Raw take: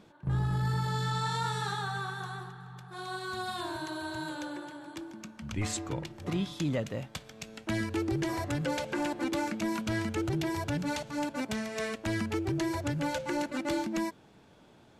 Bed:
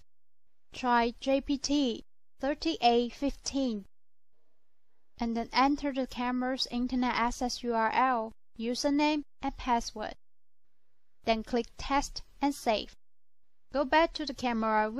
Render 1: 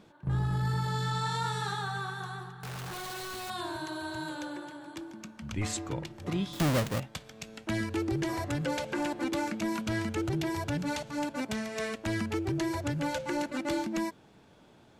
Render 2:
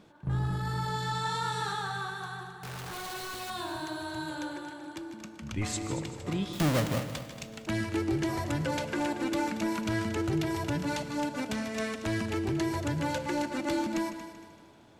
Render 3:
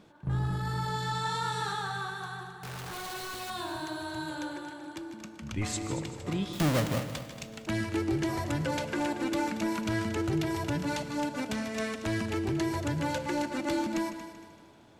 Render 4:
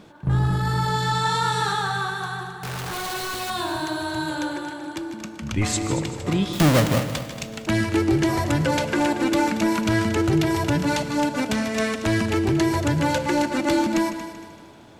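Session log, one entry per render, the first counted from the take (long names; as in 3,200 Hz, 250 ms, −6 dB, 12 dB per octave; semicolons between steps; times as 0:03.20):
0:02.63–0:03.50: sign of each sample alone; 0:06.53–0:07.00: each half-wave held at its own peak
echo machine with several playback heads 77 ms, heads second and third, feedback 47%, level −12.5 dB; feedback delay network reverb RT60 1.7 s, high-frequency decay 0.85×, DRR 14.5 dB
no processing that can be heard
level +9.5 dB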